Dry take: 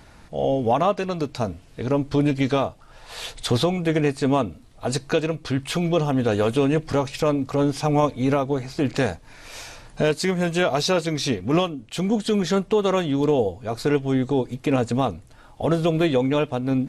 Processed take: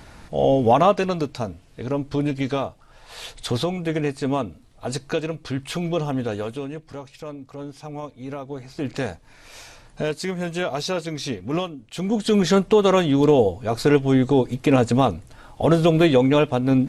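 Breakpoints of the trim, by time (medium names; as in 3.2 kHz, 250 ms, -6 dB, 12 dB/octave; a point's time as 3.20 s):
1.04 s +4 dB
1.47 s -3 dB
6.15 s -3 dB
6.81 s -14 dB
8.17 s -14 dB
8.87 s -4.5 dB
11.90 s -4.5 dB
12.39 s +4 dB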